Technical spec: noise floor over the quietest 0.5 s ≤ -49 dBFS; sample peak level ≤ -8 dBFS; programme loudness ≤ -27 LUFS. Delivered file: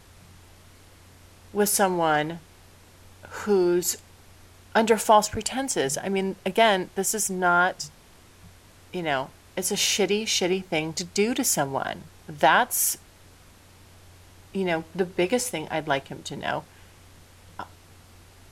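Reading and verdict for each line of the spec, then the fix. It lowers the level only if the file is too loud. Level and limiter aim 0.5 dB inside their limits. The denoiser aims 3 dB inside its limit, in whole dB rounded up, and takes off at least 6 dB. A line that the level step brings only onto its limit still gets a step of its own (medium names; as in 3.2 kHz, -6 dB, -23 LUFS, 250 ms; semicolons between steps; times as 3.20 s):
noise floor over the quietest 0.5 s -52 dBFS: pass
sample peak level -6.5 dBFS: fail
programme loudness -24.5 LUFS: fail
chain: trim -3 dB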